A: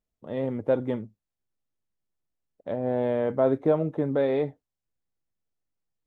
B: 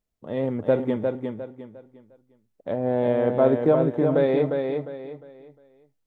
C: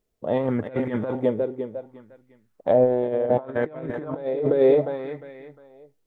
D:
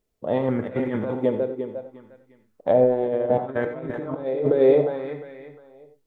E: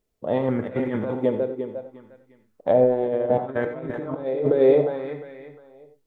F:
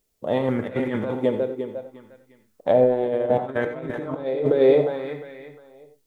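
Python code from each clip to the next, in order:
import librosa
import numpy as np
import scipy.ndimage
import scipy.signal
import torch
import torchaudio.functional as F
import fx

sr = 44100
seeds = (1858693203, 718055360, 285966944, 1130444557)

y1 = fx.echo_feedback(x, sr, ms=354, feedback_pct=31, wet_db=-5)
y1 = y1 * 10.0 ** (3.0 / 20.0)
y2 = fx.over_compress(y1, sr, threshold_db=-26.0, ratio=-0.5)
y2 = fx.bell_lfo(y2, sr, hz=0.66, low_hz=390.0, high_hz=2100.0, db=11)
y3 = fx.rev_gated(y2, sr, seeds[0], gate_ms=110, shape='rising', drr_db=8.0)
y4 = y3
y5 = fx.high_shelf(y4, sr, hz=2900.0, db=11.0)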